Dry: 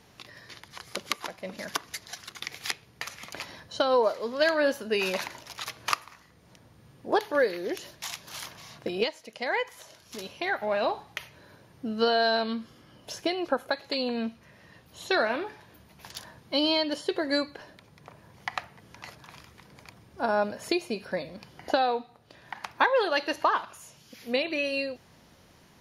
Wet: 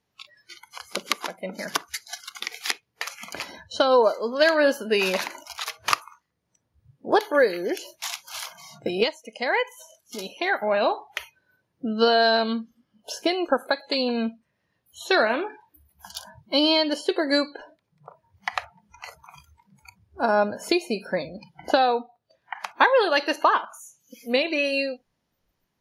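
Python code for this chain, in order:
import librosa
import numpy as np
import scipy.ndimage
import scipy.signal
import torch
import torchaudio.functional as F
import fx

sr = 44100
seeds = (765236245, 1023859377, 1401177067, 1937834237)

y = fx.noise_reduce_blind(x, sr, reduce_db=25)
y = y * librosa.db_to_amplitude(5.0)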